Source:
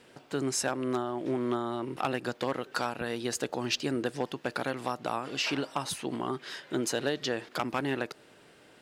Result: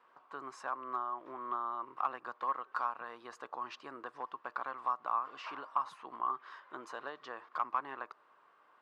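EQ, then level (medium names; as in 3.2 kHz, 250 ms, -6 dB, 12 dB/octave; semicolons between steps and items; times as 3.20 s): band-pass filter 1.1 kHz, Q 8.4; +7.5 dB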